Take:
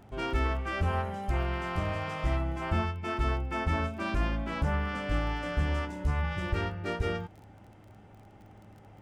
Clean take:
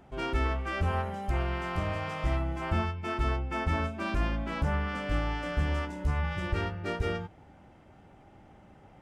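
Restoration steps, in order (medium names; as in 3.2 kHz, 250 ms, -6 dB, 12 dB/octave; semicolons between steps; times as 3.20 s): de-click; de-hum 104.8 Hz, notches 4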